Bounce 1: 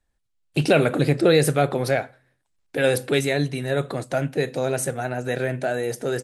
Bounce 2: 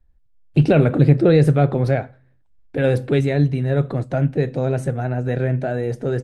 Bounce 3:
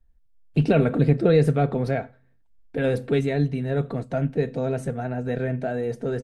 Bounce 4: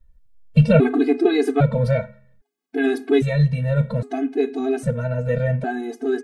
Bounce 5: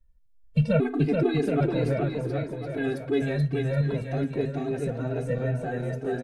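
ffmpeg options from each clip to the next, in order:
-af "aemphasis=mode=reproduction:type=riaa,volume=-1.5dB"
-af "aecho=1:1:4.4:0.4,volume=-4.5dB"
-af "bandreject=f=206.9:t=h:w=4,bandreject=f=413.8:t=h:w=4,bandreject=f=620.7:t=h:w=4,bandreject=f=827.6:t=h:w=4,bandreject=f=1.0345k:t=h:w=4,bandreject=f=1.2414k:t=h:w=4,bandreject=f=1.4483k:t=h:w=4,bandreject=f=1.6552k:t=h:w=4,bandreject=f=1.8621k:t=h:w=4,bandreject=f=2.069k:t=h:w=4,bandreject=f=2.2759k:t=h:w=4,bandreject=f=2.4828k:t=h:w=4,bandreject=f=2.6897k:t=h:w=4,afftfilt=real='re*gt(sin(2*PI*0.62*pts/sr)*(1-2*mod(floor(b*sr/1024/220),2)),0)':imag='im*gt(sin(2*PI*0.62*pts/sr)*(1-2*mod(floor(b*sr/1024/220),2)),0)':win_size=1024:overlap=0.75,volume=7.5dB"
-af "aecho=1:1:430|774|1049|1269|1445:0.631|0.398|0.251|0.158|0.1,volume=-8.5dB"

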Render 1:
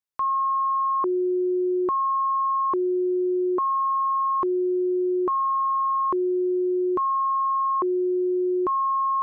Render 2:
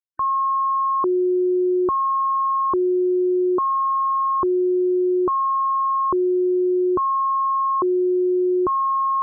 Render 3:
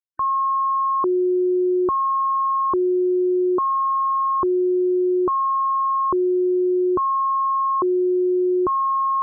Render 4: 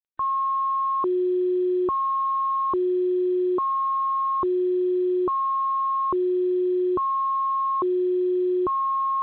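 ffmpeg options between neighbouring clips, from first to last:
-af "afftfilt=real='re*gte(hypot(re,im),0.0112)':imag='im*gte(hypot(re,im),0.0112)':win_size=1024:overlap=0.75,equalizer=f=66:t=o:w=2.6:g=11,volume=2.5dB"
-af anull
-af "volume=-3.5dB" -ar 8000 -c:a pcm_mulaw

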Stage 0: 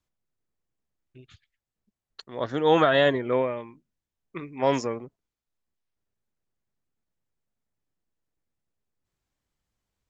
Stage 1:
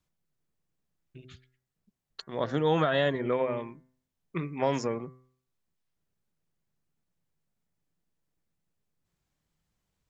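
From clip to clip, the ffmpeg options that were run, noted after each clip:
-af "equalizer=f=160:t=o:w=0.43:g=9,bandreject=f=128.1:t=h:w=4,bandreject=f=256.2:t=h:w=4,bandreject=f=384.3:t=h:w=4,bandreject=f=512.4:t=h:w=4,bandreject=f=640.5:t=h:w=4,bandreject=f=768.6:t=h:w=4,bandreject=f=896.7:t=h:w=4,bandreject=f=1.0248k:t=h:w=4,bandreject=f=1.1529k:t=h:w=4,bandreject=f=1.281k:t=h:w=4,bandreject=f=1.4091k:t=h:w=4,bandreject=f=1.5372k:t=h:w=4,bandreject=f=1.6653k:t=h:w=4,bandreject=f=1.7934k:t=h:w=4,bandreject=f=1.9215k:t=h:w=4,bandreject=f=2.0496k:t=h:w=4,bandreject=f=2.1777k:t=h:w=4,acompressor=threshold=-27dB:ratio=2.5,volume=1.5dB"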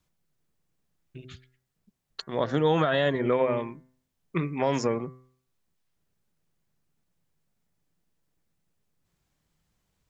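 -af "alimiter=limit=-18dB:level=0:latency=1:release=193,volume=5dB"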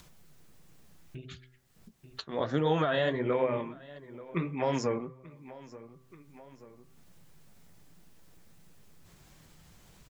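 -filter_complex "[0:a]asplit=2[a][b];[b]adelay=885,lowpass=f=4.8k:p=1,volume=-23.5dB,asplit=2[c][d];[d]adelay=885,lowpass=f=4.8k:p=1,volume=0.28[e];[a][c][e]amix=inputs=3:normalize=0,acompressor=mode=upward:threshold=-34dB:ratio=2.5,flanger=delay=4.9:depth=8:regen=-47:speed=1.5:shape=triangular"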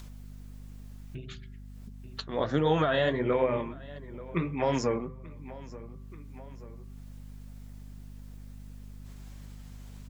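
-af "aeval=exprs='val(0)+0.00501*(sin(2*PI*50*n/s)+sin(2*PI*2*50*n/s)/2+sin(2*PI*3*50*n/s)/3+sin(2*PI*4*50*n/s)/4+sin(2*PI*5*50*n/s)/5)':c=same,volume=2dB"

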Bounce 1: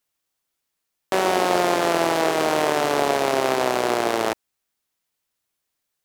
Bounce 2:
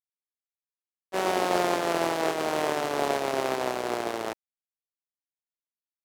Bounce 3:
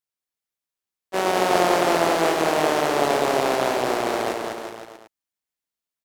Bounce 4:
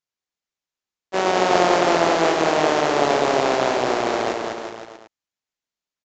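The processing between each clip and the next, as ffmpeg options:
-af "agate=range=-33dB:threshold=-13dB:ratio=3:detection=peak"
-af "aecho=1:1:200|370|514.5|637.3|741.7:0.631|0.398|0.251|0.158|0.1,volume=4.5dB"
-af "aresample=16000,aresample=44100,volume=2dB"

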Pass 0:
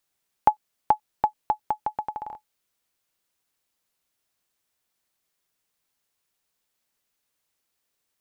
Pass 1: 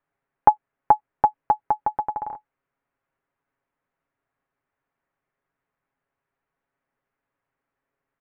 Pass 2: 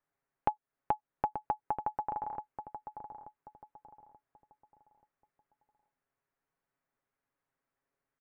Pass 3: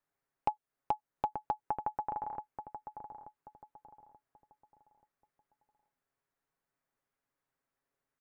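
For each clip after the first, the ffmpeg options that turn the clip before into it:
-af "lowpass=f=1.9k:w=0.5412,lowpass=f=1.9k:w=1.3066,aecho=1:1:7.3:0.48,volume=3.5dB"
-filter_complex "[0:a]acompressor=threshold=-25dB:ratio=2.5,asplit=2[a][b];[b]adelay=882,lowpass=f=1.1k:p=1,volume=-8dB,asplit=2[c][d];[d]adelay=882,lowpass=f=1.1k:p=1,volume=0.38,asplit=2[e][f];[f]adelay=882,lowpass=f=1.1k:p=1,volume=0.38,asplit=2[g][h];[h]adelay=882,lowpass=f=1.1k:p=1,volume=0.38[i];[c][e][g][i]amix=inputs=4:normalize=0[j];[a][j]amix=inputs=2:normalize=0,volume=-6.5dB"
-af "volume=17.5dB,asoftclip=hard,volume=-17.5dB,volume=-1dB"

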